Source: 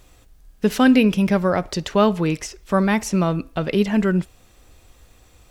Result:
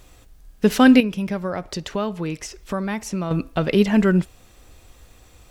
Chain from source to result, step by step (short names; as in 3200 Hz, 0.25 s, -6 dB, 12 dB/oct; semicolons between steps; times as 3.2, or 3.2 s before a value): 1–3.31 compressor 2:1, threshold -32 dBFS, peak gain reduction 11.5 dB; gain +2 dB